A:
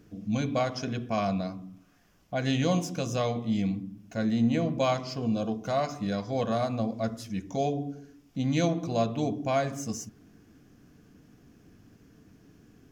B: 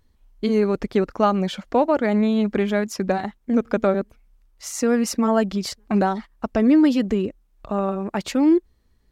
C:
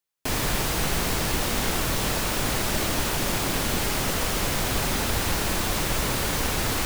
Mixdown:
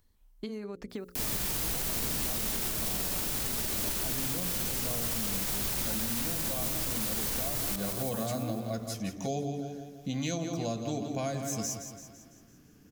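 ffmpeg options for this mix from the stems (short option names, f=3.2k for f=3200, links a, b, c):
-filter_complex "[0:a]dynaudnorm=f=680:g=7:m=9dB,adelay=1700,volume=-9dB,asplit=2[a][b];[b]volume=-10.5dB[c];[1:a]bandreject=f=60:t=h:w=6,bandreject=f=120:t=h:w=6,bandreject=f=180:t=h:w=6,bandreject=f=240:t=h:w=6,bandreject=f=300:t=h:w=6,bandreject=f=360:t=h:w=6,bandreject=f=420:t=h:w=6,bandreject=f=480:t=h:w=6,bandreject=f=540:t=h:w=6,acompressor=threshold=-28dB:ratio=16,volume=-7dB[d];[2:a]highshelf=f=4.9k:g=9,adelay=900,volume=-2dB,asplit=2[e][f];[f]volume=-13.5dB[g];[c][g]amix=inputs=2:normalize=0,aecho=0:1:168|336|504|672|840|1008|1176:1|0.51|0.26|0.133|0.0677|0.0345|0.0176[h];[a][d][e][h]amix=inputs=4:normalize=0,acrossover=split=460|5600[i][j][k];[i]acompressor=threshold=-32dB:ratio=4[l];[j]acompressor=threshold=-38dB:ratio=4[m];[k]acompressor=threshold=-41dB:ratio=4[n];[l][m][n]amix=inputs=3:normalize=0,crystalizer=i=1.5:c=0,alimiter=limit=-22dB:level=0:latency=1:release=67"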